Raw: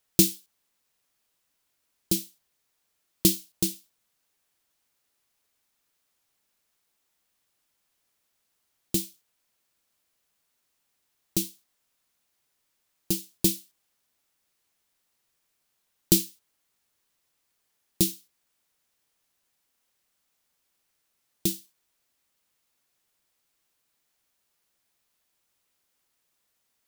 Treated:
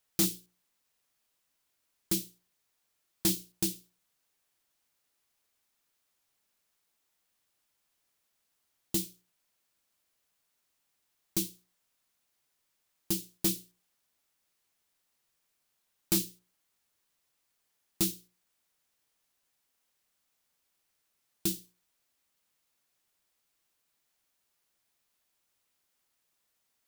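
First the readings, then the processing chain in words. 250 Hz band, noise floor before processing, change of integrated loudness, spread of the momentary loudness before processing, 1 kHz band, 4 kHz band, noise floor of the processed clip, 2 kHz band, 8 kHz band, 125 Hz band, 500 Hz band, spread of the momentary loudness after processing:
-6.0 dB, -76 dBFS, -5.5 dB, 17 LU, +1.5 dB, -5.0 dB, -79 dBFS, -2.0 dB, -5.5 dB, -7.0 dB, -6.5 dB, 13 LU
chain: notches 60/120/180/240/300/360/420/480/540 Hz; overloaded stage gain 19 dB; gain -2.5 dB

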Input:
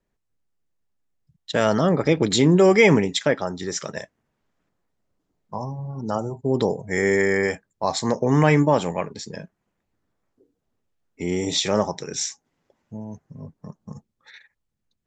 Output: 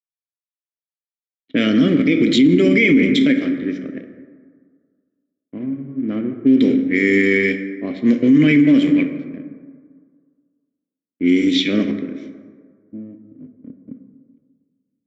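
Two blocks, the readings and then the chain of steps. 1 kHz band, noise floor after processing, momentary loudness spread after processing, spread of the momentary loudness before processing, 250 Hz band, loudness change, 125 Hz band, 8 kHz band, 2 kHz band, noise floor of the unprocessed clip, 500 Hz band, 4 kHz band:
under -10 dB, under -85 dBFS, 17 LU, 21 LU, +9.5 dB, +5.5 dB, -1.5 dB, under -10 dB, +5.0 dB, -78 dBFS, -1.0 dB, +2.5 dB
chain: crossover distortion -36 dBFS; vowel filter i; low-pass opened by the level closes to 660 Hz, open at -29.5 dBFS; plate-style reverb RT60 1.8 s, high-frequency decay 0.4×, DRR 6.5 dB; maximiser +24.5 dB; gain -4.5 dB

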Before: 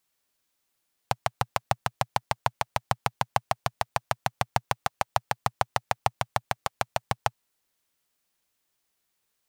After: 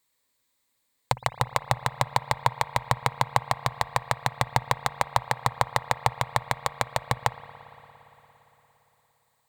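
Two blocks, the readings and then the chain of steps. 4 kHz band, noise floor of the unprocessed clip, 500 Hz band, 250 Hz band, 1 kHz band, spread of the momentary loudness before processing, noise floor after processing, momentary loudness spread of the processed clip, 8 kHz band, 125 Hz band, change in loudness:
+2.5 dB, -78 dBFS, +1.5 dB, +2.5 dB, +3.0 dB, 3 LU, -75 dBFS, 3 LU, +2.5 dB, +4.0 dB, +3.0 dB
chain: ripple EQ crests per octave 1, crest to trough 8 dB; spring tank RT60 3.9 s, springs 57 ms, chirp 70 ms, DRR 14 dB; gain +2 dB

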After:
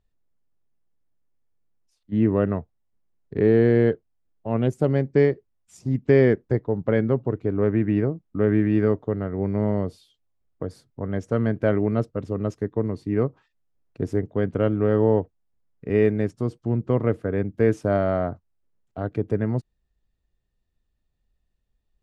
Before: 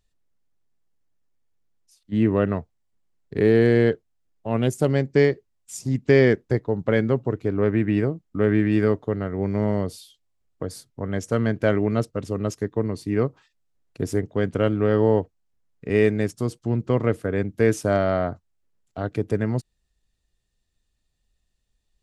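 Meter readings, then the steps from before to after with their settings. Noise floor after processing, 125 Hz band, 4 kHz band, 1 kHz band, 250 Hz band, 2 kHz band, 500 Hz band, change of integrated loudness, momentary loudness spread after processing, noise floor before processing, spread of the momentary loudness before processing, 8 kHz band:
-75 dBFS, 0.0 dB, n/a, -2.0 dB, 0.0 dB, -4.5 dB, -0.5 dB, -0.5 dB, 12 LU, -74 dBFS, 13 LU, under -10 dB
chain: LPF 1300 Hz 6 dB/oct

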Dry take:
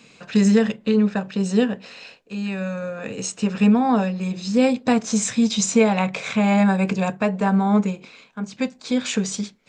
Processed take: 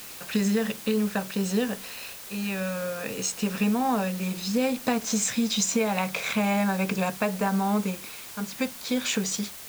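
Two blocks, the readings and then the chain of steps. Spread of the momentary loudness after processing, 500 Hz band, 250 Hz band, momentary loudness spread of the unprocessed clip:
8 LU, -6.0 dB, -7.5 dB, 12 LU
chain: low shelf 420 Hz -5.5 dB; compressor, threshold -21 dBFS, peak gain reduction 7.5 dB; added noise white -42 dBFS

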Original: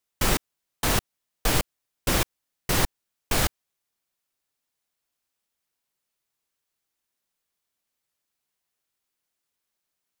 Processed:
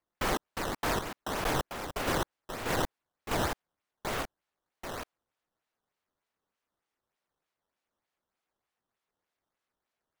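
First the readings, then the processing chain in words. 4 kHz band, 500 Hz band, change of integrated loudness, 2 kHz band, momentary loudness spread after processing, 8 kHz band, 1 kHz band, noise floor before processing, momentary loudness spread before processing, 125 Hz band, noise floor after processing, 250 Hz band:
-8.0 dB, -1.5 dB, -7.5 dB, -4.0 dB, 11 LU, -11.0 dB, -1.0 dB, -83 dBFS, 7 LU, -8.0 dB, under -85 dBFS, -4.0 dB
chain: echoes that change speed 0.331 s, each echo -2 st, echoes 2, each echo -6 dB; overdrive pedal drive 17 dB, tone 1100 Hz, clips at -8 dBFS; decimation with a swept rate 11×, swing 160% 3.3 Hz; gain -6.5 dB

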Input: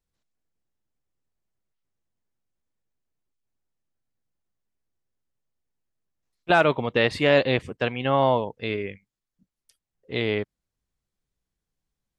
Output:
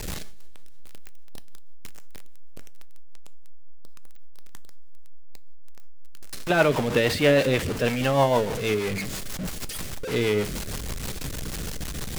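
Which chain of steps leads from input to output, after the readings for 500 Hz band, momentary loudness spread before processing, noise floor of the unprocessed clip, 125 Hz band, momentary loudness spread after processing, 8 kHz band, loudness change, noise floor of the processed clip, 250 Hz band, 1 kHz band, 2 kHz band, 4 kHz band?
+1.0 dB, 13 LU, under -85 dBFS, +3.5 dB, 13 LU, n/a, -2.0 dB, -33 dBFS, +2.5 dB, -2.0 dB, -0.5 dB, +1.5 dB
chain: zero-crossing step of -22.5 dBFS; two-slope reverb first 0.54 s, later 3.3 s, from -16 dB, DRR 13.5 dB; rotary speaker horn 6.3 Hz

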